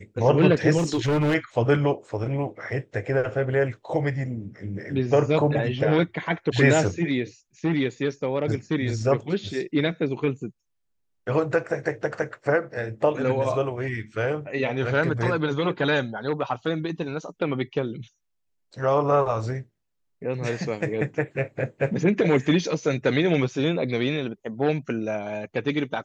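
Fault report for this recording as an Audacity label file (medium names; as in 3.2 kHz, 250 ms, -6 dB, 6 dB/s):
0.770000	1.350000	clipped -19 dBFS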